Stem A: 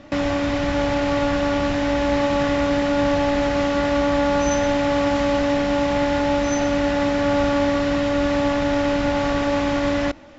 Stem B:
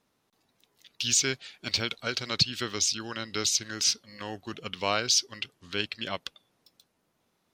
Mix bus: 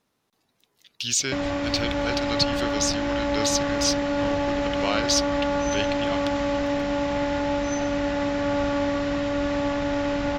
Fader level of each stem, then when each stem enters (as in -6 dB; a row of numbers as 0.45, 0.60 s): -5.0, +0.5 dB; 1.20, 0.00 s